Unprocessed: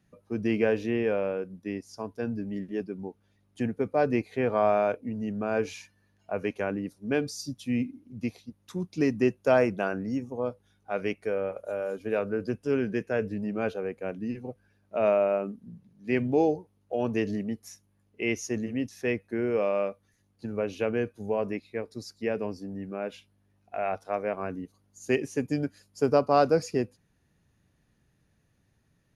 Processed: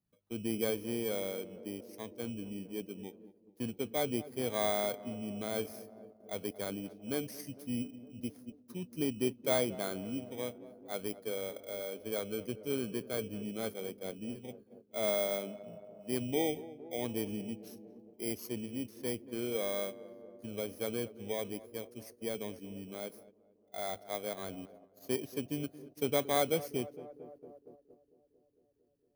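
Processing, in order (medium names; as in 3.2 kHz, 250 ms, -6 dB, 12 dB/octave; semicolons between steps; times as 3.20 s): bit-reversed sample order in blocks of 16 samples; on a send: tape echo 228 ms, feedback 89%, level -14.5 dB, low-pass 1 kHz; on the sum: gate -45 dBFS, range -9 dB; trim -8.5 dB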